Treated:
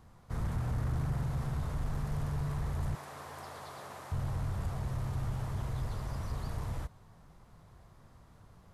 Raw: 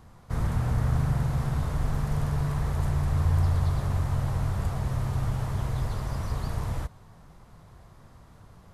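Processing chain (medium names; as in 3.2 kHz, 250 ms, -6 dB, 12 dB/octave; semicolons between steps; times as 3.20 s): 2.95–4.12 s: high-pass 440 Hz 12 dB/octave; saturation -19 dBFS, distortion -20 dB; trim -6 dB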